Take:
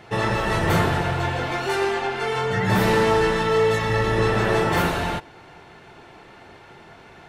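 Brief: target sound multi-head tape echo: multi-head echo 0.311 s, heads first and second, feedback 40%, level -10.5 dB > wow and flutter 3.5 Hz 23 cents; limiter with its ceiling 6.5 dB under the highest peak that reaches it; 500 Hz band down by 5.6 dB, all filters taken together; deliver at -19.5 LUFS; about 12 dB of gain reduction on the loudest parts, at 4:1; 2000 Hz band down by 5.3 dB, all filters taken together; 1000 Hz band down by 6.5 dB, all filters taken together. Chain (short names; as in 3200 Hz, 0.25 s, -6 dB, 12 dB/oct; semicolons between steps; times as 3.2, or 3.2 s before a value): bell 500 Hz -5.5 dB; bell 1000 Hz -5.5 dB; bell 2000 Hz -4.5 dB; compressor 4:1, threshold -32 dBFS; limiter -27.5 dBFS; multi-head echo 0.311 s, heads first and second, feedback 40%, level -10.5 dB; wow and flutter 3.5 Hz 23 cents; gain +16.5 dB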